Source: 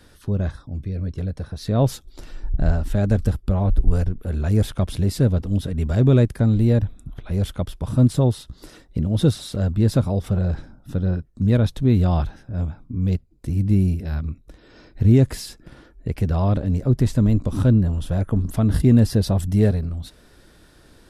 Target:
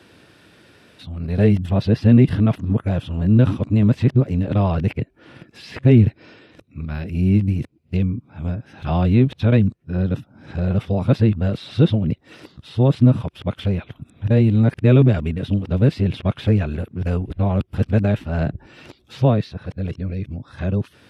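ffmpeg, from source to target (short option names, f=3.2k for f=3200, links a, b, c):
-filter_complex "[0:a]areverse,equalizer=f=2.6k:t=o:w=0.66:g=9,acrossover=split=4300[a][b];[b]acompressor=threshold=-55dB:ratio=6[c];[a][c]amix=inputs=2:normalize=0,highpass=f=91:w=0.5412,highpass=f=91:w=1.3066,highshelf=f=6.1k:g=-8.5,bandreject=f=6.9k:w=23,volume=2.5dB"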